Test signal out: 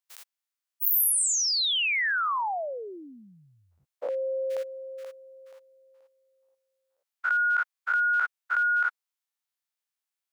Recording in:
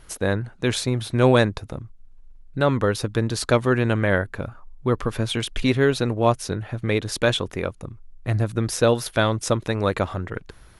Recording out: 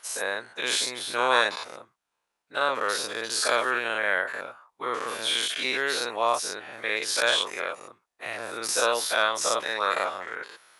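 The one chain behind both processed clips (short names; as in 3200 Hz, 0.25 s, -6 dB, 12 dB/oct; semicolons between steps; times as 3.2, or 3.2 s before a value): spectral dilation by 0.12 s; HPF 790 Hz 12 dB/oct; gain -4 dB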